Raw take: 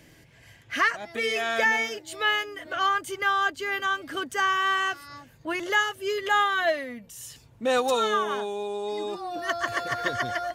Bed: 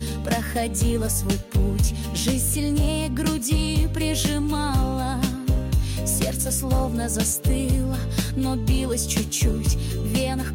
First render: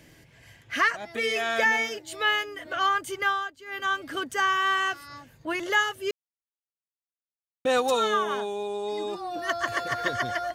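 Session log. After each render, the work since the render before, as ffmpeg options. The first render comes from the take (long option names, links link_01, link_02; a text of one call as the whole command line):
ffmpeg -i in.wav -filter_complex "[0:a]asplit=5[link_01][link_02][link_03][link_04][link_05];[link_01]atrim=end=3.5,asetpts=PTS-STARTPTS,afade=type=out:start_time=3.26:duration=0.24:silence=0.188365[link_06];[link_02]atrim=start=3.5:end=3.65,asetpts=PTS-STARTPTS,volume=-14.5dB[link_07];[link_03]atrim=start=3.65:end=6.11,asetpts=PTS-STARTPTS,afade=type=in:duration=0.24:silence=0.188365,afade=type=out:start_time=2.456:duration=0.004:curve=hsin[link_08];[link_04]atrim=start=6.11:end=7.65,asetpts=PTS-STARTPTS,volume=0[link_09];[link_05]atrim=start=7.65,asetpts=PTS-STARTPTS,afade=type=in:duration=0.004:curve=hsin[link_10];[link_06][link_07][link_08][link_09][link_10]concat=n=5:v=0:a=1" out.wav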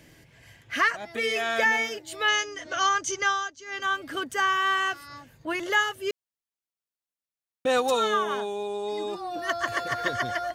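ffmpeg -i in.wav -filter_complex "[0:a]asettb=1/sr,asplit=3[link_01][link_02][link_03];[link_01]atrim=end=2.284[link_04];[link_02]atrim=start=2.28:end=3.83,asetpts=PTS-STARTPTS,afade=type=in:duration=0.004:curve=qsin,afade=type=out:start_time=1.546:duration=0.004:curve=qsin,lowpass=frequency=6100:width_type=q:width=8.4[link_05];[link_03]atrim=start=3.826[link_06];[link_04][link_05]acrossfade=duration=0.004:curve1=hsin:curve2=qsin[link_07];[link_07][link_06]acrossfade=duration=0.004:curve1=qsin:curve2=hsin" out.wav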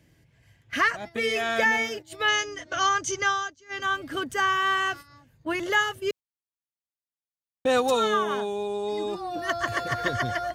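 ffmpeg -i in.wav -af "equalizer=frequency=80:width=0.42:gain=9,agate=range=-11dB:threshold=-37dB:ratio=16:detection=peak" out.wav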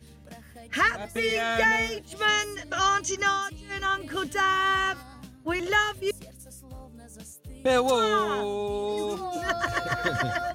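ffmpeg -i in.wav -i bed.wav -filter_complex "[1:a]volume=-22.5dB[link_01];[0:a][link_01]amix=inputs=2:normalize=0" out.wav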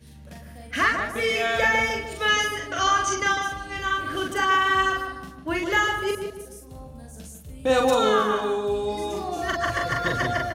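ffmpeg -i in.wav -filter_complex "[0:a]asplit=2[link_01][link_02];[link_02]adelay=42,volume=-3dB[link_03];[link_01][link_03]amix=inputs=2:normalize=0,asplit=2[link_04][link_05];[link_05]adelay=151,lowpass=frequency=1900:poles=1,volume=-5.5dB,asplit=2[link_06][link_07];[link_07]adelay=151,lowpass=frequency=1900:poles=1,volume=0.42,asplit=2[link_08][link_09];[link_09]adelay=151,lowpass=frequency=1900:poles=1,volume=0.42,asplit=2[link_10][link_11];[link_11]adelay=151,lowpass=frequency=1900:poles=1,volume=0.42,asplit=2[link_12][link_13];[link_13]adelay=151,lowpass=frequency=1900:poles=1,volume=0.42[link_14];[link_06][link_08][link_10][link_12][link_14]amix=inputs=5:normalize=0[link_15];[link_04][link_15]amix=inputs=2:normalize=0" out.wav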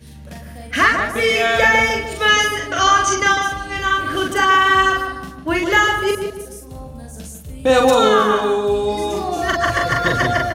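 ffmpeg -i in.wav -af "volume=7.5dB,alimiter=limit=-3dB:level=0:latency=1" out.wav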